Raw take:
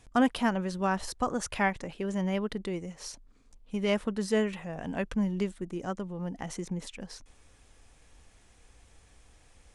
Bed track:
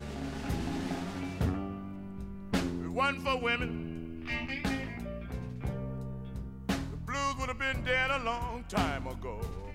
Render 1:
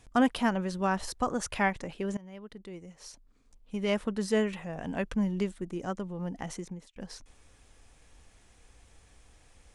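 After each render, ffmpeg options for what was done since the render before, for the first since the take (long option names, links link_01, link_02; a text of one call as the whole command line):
ffmpeg -i in.wav -filter_complex "[0:a]asplit=3[link_01][link_02][link_03];[link_01]atrim=end=2.17,asetpts=PTS-STARTPTS,afade=type=out:start_time=2.166:duration=0.004:curve=hsin:silence=0.0841395[link_04];[link_02]atrim=start=2.17:end=6.96,asetpts=PTS-STARTPTS,afade=type=in:duration=2.02:silence=0.0841395,afade=type=out:start_time=4.31:duration=0.48[link_05];[link_03]atrim=start=6.96,asetpts=PTS-STARTPTS,afade=type=in:duration=0.004:curve=hsin[link_06];[link_04][link_05][link_06]concat=n=3:v=0:a=1" out.wav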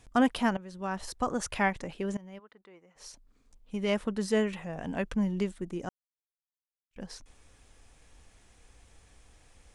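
ffmpeg -i in.wav -filter_complex "[0:a]asplit=3[link_01][link_02][link_03];[link_01]afade=type=out:start_time=2.38:duration=0.02[link_04];[link_02]bandpass=frequency=1200:width_type=q:width=1.1,afade=type=in:start_time=2.38:duration=0.02,afade=type=out:start_time=2.95:duration=0.02[link_05];[link_03]afade=type=in:start_time=2.95:duration=0.02[link_06];[link_04][link_05][link_06]amix=inputs=3:normalize=0,asplit=4[link_07][link_08][link_09][link_10];[link_07]atrim=end=0.57,asetpts=PTS-STARTPTS,afade=type=out:start_time=0.566:duration=0.004:curve=hsin:silence=0.141254[link_11];[link_08]atrim=start=0.57:end=5.89,asetpts=PTS-STARTPTS,afade=type=in:duration=0.74:silence=0.141254,afade=type=out:start_time=5.316:duration=0.004:curve=hsin[link_12];[link_09]atrim=start=5.89:end=6.91,asetpts=PTS-STARTPTS,volume=0[link_13];[link_10]atrim=start=6.91,asetpts=PTS-STARTPTS,afade=type=in:duration=0.004:curve=hsin[link_14];[link_11][link_12][link_13][link_14]concat=n=4:v=0:a=1" out.wav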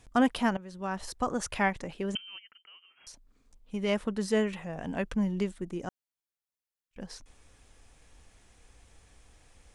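ffmpeg -i in.wav -filter_complex "[0:a]asettb=1/sr,asplit=3[link_01][link_02][link_03];[link_01]atrim=end=2.154[link_04];[link_02]atrim=start=2.15:end=3.07,asetpts=PTS-STARTPTS,afade=type=in:duration=0.004:curve=qsin,afade=type=out:start_time=0.916:duration=0.004:curve=qsin,lowpass=frequency=2800:width_type=q:width=0.5098,lowpass=frequency=2800:width_type=q:width=0.6013,lowpass=frequency=2800:width_type=q:width=0.9,lowpass=frequency=2800:width_type=q:width=2.563,afreqshift=-3300[link_05];[link_03]atrim=start=3.066[link_06];[link_04][link_05]acrossfade=duration=0.004:curve1=hsin:curve2=qsin[link_07];[link_07][link_06]acrossfade=duration=0.004:curve1=qsin:curve2=hsin" out.wav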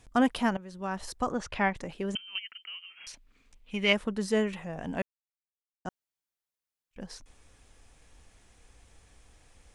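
ffmpeg -i in.wav -filter_complex "[0:a]asettb=1/sr,asplit=3[link_01][link_02][link_03];[link_01]atrim=end=1.324[link_04];[link_02]atrim=start=1.32:end=1.75,asetpts=PTS-STARTPTS,afade=type=in:duration=0.004:curve=qsin,afade=type=out:start_time=0.426:duration=0.004:curve=qsin,lowpass=4400[link_05];[link_03]atrim=start=1.746[link_06];[link_04][link_05]acrossfade=duration=0.004:curve1=hsin:curve2=qsin[link_07];[link_07][link_06]acrossfade=duration=0.004:curve1=qsin:curve2=hsin,asettb=1/sr,asplit=3[link_08][link_09][link_10];[link_08]atrim=end=2.354[link_11];[link_09]atrim=start=2.35:end=3.93,asetpts=PTS-STARTPTS,afade=type=in:duration=0.004:curve=qsin,afade=type=out:start_time=1.576:duration=0.004:curve=qsin,equalizer=frequency=2500:width_type=o:width=1.4:gain=13.5[link_12];[link_10]atrim=start=3.926[link_13];[link_11][link_12]acrossfade=duration=0.004:curve1=hsin:curve2=qsin[link_14];[link_14][link_13]acrossfade=duration=0.004:curve1=qsin:curve2=hsin,asplit=3[link_15][link_16][link_17];[link_15]atrim=end=5.02,asetpts=PTS-STARTPTS,afade=type=out:start_time=5.016:duration=0.004:curve=hsin[link_18];[link_16]atrim=start=5.02:end=5.85,asetpts=PTS-STARTPTS,volume=0[link_19];[link_17]atrim=start=5.85,asetpts=PTS-STARTPTS,afade=type=in:duration=0.004:curve=hsin[link_20];[link_18][link_19][link_20]concat=n=3:v=0:a=1" out.wav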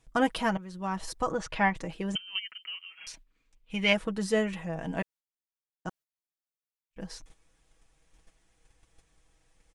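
ffmpeg -i in.wav -af "agate=range=-10dB:threshold=-53dB:ratio=16:detection=peak,aecho=1:1:6.2:0.59" out.wav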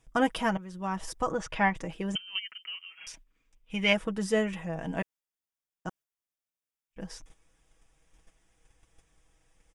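ffmpeg -i in.wav -af "bandreject=frequency=4200:width=5.7" out.wav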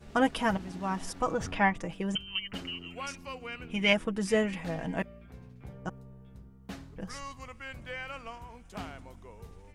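ffmpeg -i in.wav -i bed.wav -filter_complex "[1:a]volume=-10.5dB[link_01];[0:a][link_01]amix=inputs=2:normalize=0" out.wav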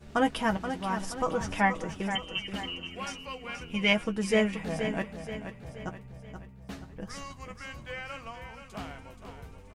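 ffmpeg -i in.wav -filter_complex "[0:a]asplit=2[link_01][link_02];[link_02]adelay=14,volume=-10.5dB[link_03];[link_01][link_03]amix=inputs=2:normalize=0,asplit=2[link_04][link_05];[link_05]aecho=0:1:478|956|1434|1912|2390:0.355|0.163|0.0751|0.0345|0.0159[link_06];[link_04][link_06]amix=inputs=2:normalize=0" out.wav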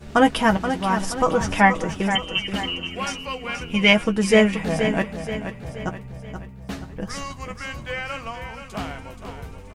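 ffmpeg -i in.wav -af "volume=9.5dB,alimiter=limit=-2dB:level=0:latency=1" out.wav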